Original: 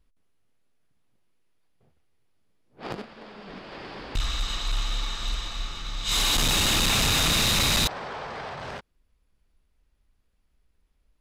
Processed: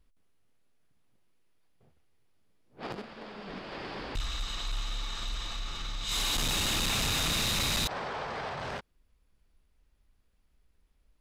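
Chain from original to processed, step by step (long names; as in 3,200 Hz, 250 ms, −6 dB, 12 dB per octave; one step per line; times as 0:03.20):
brickwall limiter −27.5 dBFS, peak gain reduction 7 dB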